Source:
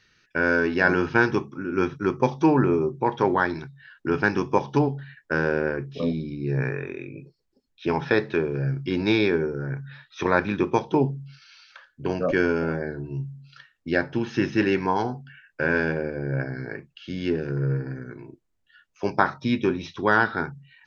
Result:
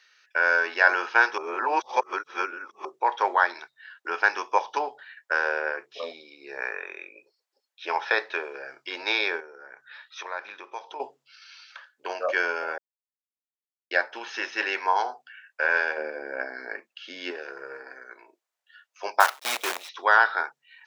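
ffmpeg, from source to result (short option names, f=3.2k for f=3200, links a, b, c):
-filter_complex "[0:a]asettb=1/sr,asplit=3[a][b][c];[a]atrim=end=9.404[d];[b]atrim=start=9.4:end=11,asetpts=PTS-STARTPTS,afade=t=in:d=0.004:c=qsin,afade=t=out:st=1.596:d=0.004:c=qsin,acompressor=threshold=-39dB:ratio=2:attack=3.2:release=140:knee=1:detection=peak[e];[c]atrim=start=10.996[f];[d][e]acrossfade=d=0.004:c1=hsin:c2=qsin[g];[g][f]acrossfade=d=0.004:c1=qsin:c2=hsin,asettb=1/sr,asplit=3[h][i][j];[h]atrim=end=15.974[k];[i]atrim=start=15.97:end=17.31,asetpts=PTS-STARTPTS,afade=t=in:d=0.004:c=qsin,afade=t=out:st=1.336:d=0.004:c=qsin,equalizer=f=240:t=o:w=0.96:g=14[l];[j]atrim=start=17.306[m];[k][l]acrossfade=d=0.004:c1=hsin:c2=qsin[n];[n][m]acrossfade=d=0.004:c1=qsin:c2=hsin,asettb=1/sr,asplit=3[o][p][q];[o]atrim=end=19.204[r];[p]atrim=start=19.2:end=19.89,asetpts=PTS-STARTPTS,afade=t=in:d=0.004:c=qsin,afade=t=out:st=0.686:d=0.004:c=qsin,acrusher=bits=5:dc=4:mix=0:aa=0.000001[s];[q]atrim=start=19.886[t];[r][s]acrossfade=d=0.004:c1=hsin:c2=qsin[u];[u][t]acrossfade=d=0.004:c1=qsin:c2=hsin,asplit=5[v][w][x][y][z];[v]atrim=end=1.382[aa];[w]atrim=start=1.378:end=2.852,asetpts=PTS-STARTPTS,areverse[ab];[x]atrim=start=2.848:end=12.78,asetpts=PTS-STARTPTS,afade=t=out:st=9.928:d=0.004:c=hsin[ac];[y]atrim=start=12.78:end=13.91,asetpts=PTS-STARTPTS,volume=0[ad];[z]atrim=start=13.91,asetpts=PTS-STARTPTS,afade=t=in:d=0.004:c=hsin[ae];[aa][ab]acrossfade=d=0.004:c1=hsin:c2=hsin[af];[ac][ad][ae]concat=n=3:v=0:a=1[ag];[af][ag]acrossfade=d=0.004:c1=hsin:c2=hsin,highpass=f=610:w=0.5412,highpass=f=610:w=1.3066,volume=2.5dB"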